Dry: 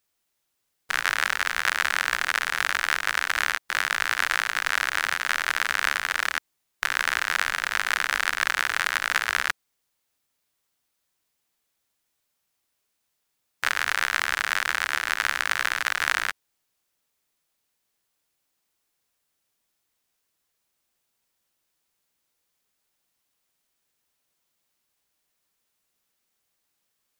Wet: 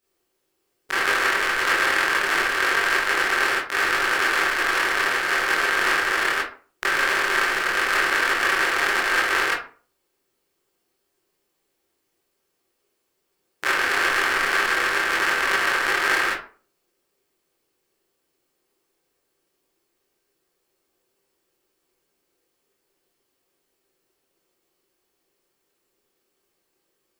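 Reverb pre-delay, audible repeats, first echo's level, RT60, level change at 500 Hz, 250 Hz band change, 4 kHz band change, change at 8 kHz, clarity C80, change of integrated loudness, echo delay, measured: 19 ms, no echo, no echo, 0.40 s, +12.5 dB, +14.5 dB, +2.5 dB, +1.0 dB, 10.5 dB, +4.0 dB, no echo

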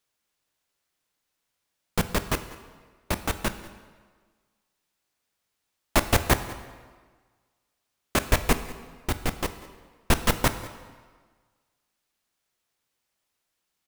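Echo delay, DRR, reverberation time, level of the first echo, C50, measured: 193 ms, 10.0 dB, 1.5 s, -20.0 dB, 11.5 dB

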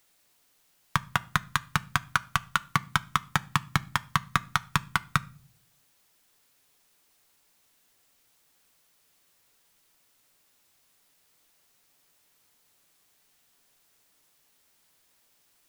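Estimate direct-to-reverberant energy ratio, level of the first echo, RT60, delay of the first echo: 12.0 dB, no echo, 0.45 s, no echo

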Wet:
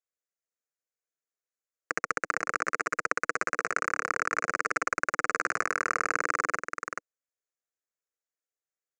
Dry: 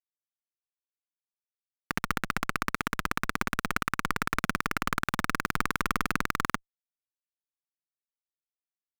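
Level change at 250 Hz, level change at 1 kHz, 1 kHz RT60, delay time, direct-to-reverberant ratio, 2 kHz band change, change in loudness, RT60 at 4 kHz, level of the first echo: -9.0 dB, +1.5 dB, no reverb, 431 ms, no reverb, +2.5 dB, +1.0 dB, no reverb, -7.0 dB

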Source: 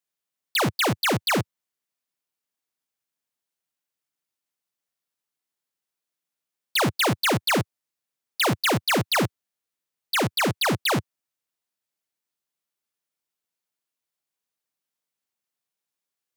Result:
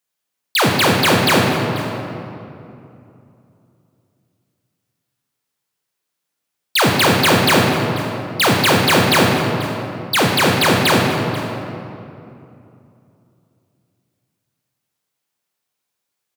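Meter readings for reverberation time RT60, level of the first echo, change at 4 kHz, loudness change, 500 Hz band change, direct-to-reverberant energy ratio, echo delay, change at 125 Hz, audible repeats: 2.8 s, -16.0 dB, +9.0 dB, +8.0 dB, +10.5 dB, -0.5 dB, 488 ms, +10.0 dB, 1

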